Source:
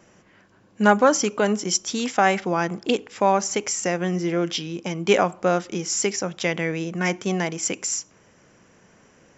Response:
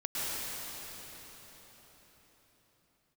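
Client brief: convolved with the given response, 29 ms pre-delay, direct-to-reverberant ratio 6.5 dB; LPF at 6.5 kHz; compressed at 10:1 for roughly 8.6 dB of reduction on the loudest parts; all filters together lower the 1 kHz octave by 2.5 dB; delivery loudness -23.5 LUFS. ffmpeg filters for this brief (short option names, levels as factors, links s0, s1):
-filter_complex "[0:a]lowpass=6500,equalizer=f=1000:t=o:g=-3.5,acompressor=threshold=0.0891:ratio=10,asplit=2[s0][s1];[1:a]atrim=start_sample=2205,adelay=29[s2];[s1][s2]afir=irnorm=-1:irlink=0,volume=0.2[s3];[s0][s3]amix=inputs=2:normalize=0,volume=1.5"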